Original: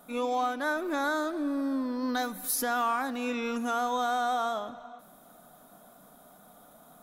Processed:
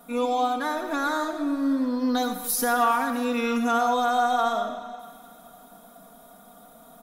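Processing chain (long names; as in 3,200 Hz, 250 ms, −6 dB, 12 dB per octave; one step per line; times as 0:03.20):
comb filter 4.3 ms
feedback echo with a high-pass in the loop 213 ms, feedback 67%, high-pass 420 Hz, level −18 dB
convolution reverb RT60 0.45 s, pre-delay 55 ms, DRR 7 dB
level +2 dB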